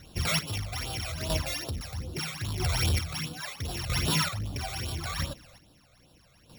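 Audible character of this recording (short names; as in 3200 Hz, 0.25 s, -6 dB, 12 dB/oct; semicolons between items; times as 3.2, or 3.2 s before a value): a buzz of ramps at a fixed pitch in blocks of 8 samples; phasing stages 12, 2.5 Hz, lowest notch 280–2100 Hz; chopped level 0.77 Hz, depth 60%, duty 30%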